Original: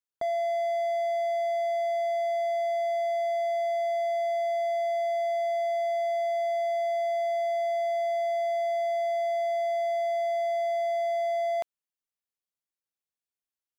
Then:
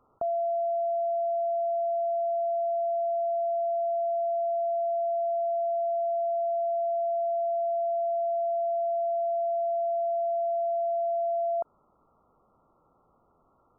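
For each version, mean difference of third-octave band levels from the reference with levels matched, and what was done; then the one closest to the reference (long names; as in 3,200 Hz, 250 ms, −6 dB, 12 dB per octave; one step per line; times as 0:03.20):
4.5 dB: linear-phase brick-wall low-pass 1,400 Hz
envelope flattener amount 50%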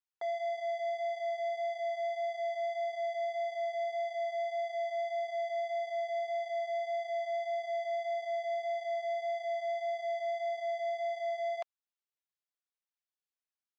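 1.5 dB: flanger 1.7 Hz, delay 0.6 ms, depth 2.4 ms, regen −32%
band-pass filter 710–5,500 Hz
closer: second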